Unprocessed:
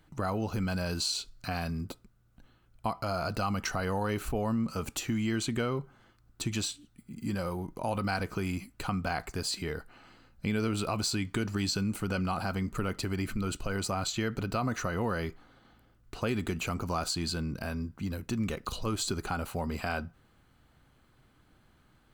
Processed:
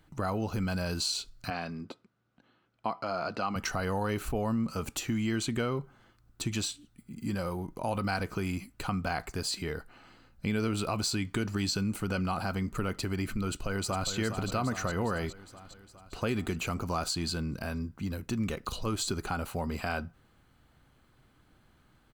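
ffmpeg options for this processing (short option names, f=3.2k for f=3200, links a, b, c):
-filter_complex "[0:a]asettb=1/sr,asplit=3[a][b][c];[a]atrim=end=1.504[d];[b]atrim=start=1.5:end=3.56,asetpts=PTS-STARTPTS,afade=t=in:d=0.004:c=qsin,afade=t=out:st=2.056:d=0.004:c=qsin,highpass=210,lowpass=4.3k[e];[c]atrim=start=3.556[f];[d][e]acrossfade=d=0.004:c1=hsin:c2=qsin[g];[g][f]acrossfade=d=0.004:c1=qsin:c2=hsin,asplit=2[h][i];[i]afade=t=in:st=13.47:d=0.01,afade=t=out:st=14.09:d=0.01,aecho=0:1:410|820|1230|1640|2050|2460|2870|3280|3690:0.398107|0.25877|0.1682|0.10933|0.0710646|0.046192|0.0300248|0.0195161|0.0126855[j];[h][j]amix=inputs=2:normalize=0"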